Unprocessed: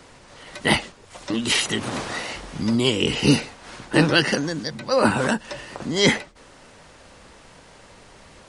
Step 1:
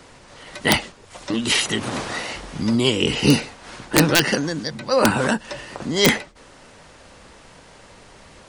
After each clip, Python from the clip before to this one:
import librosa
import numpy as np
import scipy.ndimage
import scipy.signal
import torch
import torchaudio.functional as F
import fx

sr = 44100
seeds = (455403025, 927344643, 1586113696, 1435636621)

y = (np.mod(10.0 ** (5.0 / 20.0) * x + 1.0, 2.0) - 1.0) / 10.0 ** (5.0 / 20.0)
y = y * 10.0 ** (1.5 / 20.0)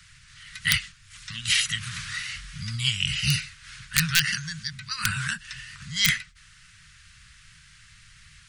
y = scipy.signal.sosfilt(scipy.signal.cheby2(4, 50, [280.0, 780.0], 'bandstop', fs=sr, output='sos'), x)
y = y * 10.0 ** (-2.5 / 20.0)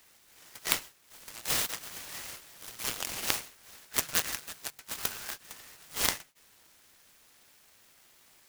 y = np.diff(x, prepend=0.0)
y = fx.noise_mod_delay(y, sr, seeds[0], noise_hz=3400.0, depth_ms=0.091)
y = y * 10.0 ** (-1.5 / 20.0)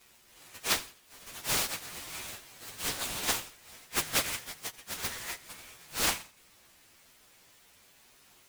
y = fx.partial_stretch(x, sr, pct=111)
y = fx.echo_feedback(y, sr, ms=85, feedback_pct=35, wet_db=-20)
y = fx.doppler_dist(y, sr, depth_ms=0.94)
y = y * 10.0 ** (7.0 / 20.0)